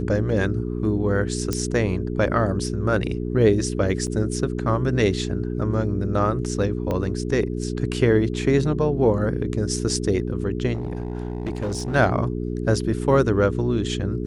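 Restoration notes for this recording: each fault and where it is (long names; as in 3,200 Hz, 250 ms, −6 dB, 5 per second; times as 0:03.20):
mains hum 60 Hz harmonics 7 −27 dBFS
0:01.53: click −11 dBFS
0:04.07–0:04.08: drop-out 6.4 ms
0:06.91: click −14 dBFS
0:10.73–0:11.96: clipping −22.5 dBFS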